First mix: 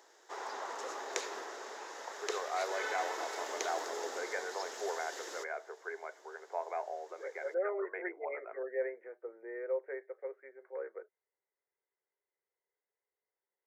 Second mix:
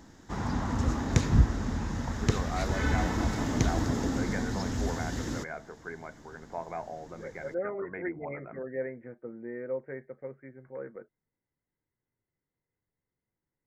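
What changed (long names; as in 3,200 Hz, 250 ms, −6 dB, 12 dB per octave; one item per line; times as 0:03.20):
background +3.0 dB
master: remove Chebyshev high-pass filter 390 Hz, order 5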